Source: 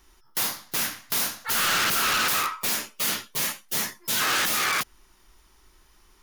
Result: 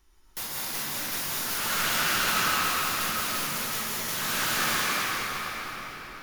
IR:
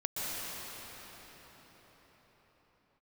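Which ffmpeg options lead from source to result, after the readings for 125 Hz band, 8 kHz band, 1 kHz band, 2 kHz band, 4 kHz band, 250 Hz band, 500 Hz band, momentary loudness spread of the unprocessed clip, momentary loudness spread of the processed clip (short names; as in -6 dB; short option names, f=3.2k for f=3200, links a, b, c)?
+2.5 dB, -2.5 dB, -0.5 dB, -1.0 dB, -2.0 dB, +1.0 dB, 0.0 dB, 6 LU, 10 LU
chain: -filter_complex "[0:a]lowshelf=f=99:g=6.5[a];[1:a]atrim=start_sample=2205[b];[a][b]afir=irnorm=-1:irlink=0,volume=-7.5dB"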